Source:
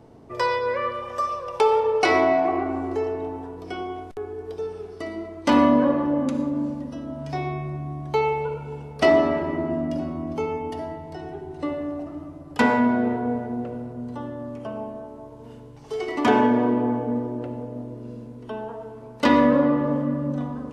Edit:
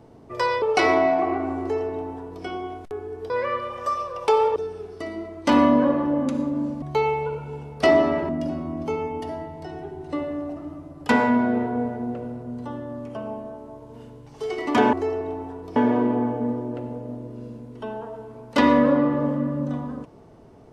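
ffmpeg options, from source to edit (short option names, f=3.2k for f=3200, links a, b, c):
-filter_complex "[0:a]asplit=8[a][b][c][d][e][f][g][h];[a]atrim=end=0.622[i];[b]atrim=start=1.878:end=4.562[j];[c]atrim=start=0.618:end=1.882[k];[d]atrim=start=4.558:end=6.822[l];[e]atrim=start=8.008:end=9.482[m];[f]atrim=start=9.788:end=16.432[n];[g]atrim=start=2.868:end=3.702[o];[h]atrim=start=16.428[p];[i][j]acrossfade=d=0.004:c1=hsin:c2=hsin[q];[q][k]acrossfade=d=0.004:c1=hsin:c2=hsin[r];[r][l]acrossfade=d=0.004:c1=hsin:c2=hsin[s];[s][m]acrossfade=d=0.004:c1=hsin:c2=hsin[t];[t][n]acrossfade=d=0.004:c1=hsin:c2=hsin[u];[u][o]acrossfade=d=0.004:c1=hsin:c2=hsin[v];[v][p]acrossfade=d=0.004:c1=hsin:c2=hsin"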